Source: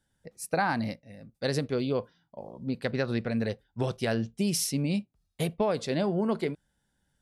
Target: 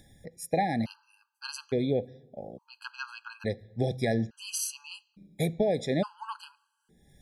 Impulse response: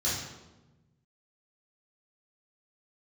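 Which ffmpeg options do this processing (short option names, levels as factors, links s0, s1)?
-filter_complex "[0:a]acompressor=mode=upward:threshold=0.00708:ratio=2.5,asplit=2[s0][s1];[1:a]atrim=start_sample=2205,lowpass=6800[s2];[s1][s2]afir=irnorm=-1:irlink=0,volume=0.0335[s3];[s0][s3]amix=inputs=2:normalize=0,afftfilt=real='re*gt(sin(2*PI*0.58*pts/sr)*(1-2*mod(floor(b*sr/1024/820),2)),0)':imag='im*gt(sin(2*PI*0.58*pts/sr)*(1-2*mod(floor(b*sr/1024/820),2)),0)':win_size=1024:overlap=0.75,volume=1.19"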